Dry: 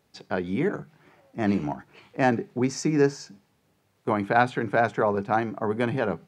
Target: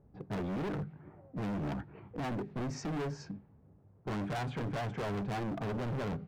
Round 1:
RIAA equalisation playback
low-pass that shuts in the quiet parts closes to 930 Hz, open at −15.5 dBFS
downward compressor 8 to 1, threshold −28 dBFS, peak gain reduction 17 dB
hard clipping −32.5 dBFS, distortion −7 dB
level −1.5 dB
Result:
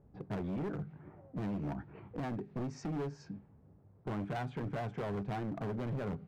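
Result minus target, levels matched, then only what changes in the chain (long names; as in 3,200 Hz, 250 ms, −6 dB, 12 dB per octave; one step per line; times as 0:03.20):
downward compressor: peak gain reduction +8.5 dB
change: downward compressor 8 to 1, threshold −18.5 dBFS, peak gain reduction 9 dB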